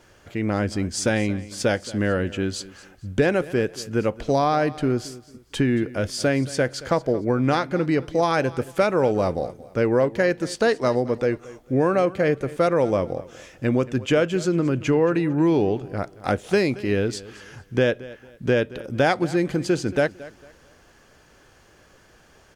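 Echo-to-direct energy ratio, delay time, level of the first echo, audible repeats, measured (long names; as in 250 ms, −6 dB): −18.0 dB, 225 ms, −18.5 dB, 2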